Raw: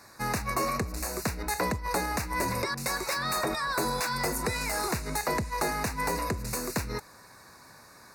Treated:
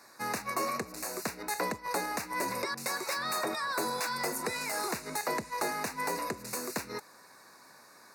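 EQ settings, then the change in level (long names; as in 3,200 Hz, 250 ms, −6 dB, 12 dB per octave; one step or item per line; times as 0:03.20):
high-pass filter 230 Hz 12 dB per octave
−3.0 dB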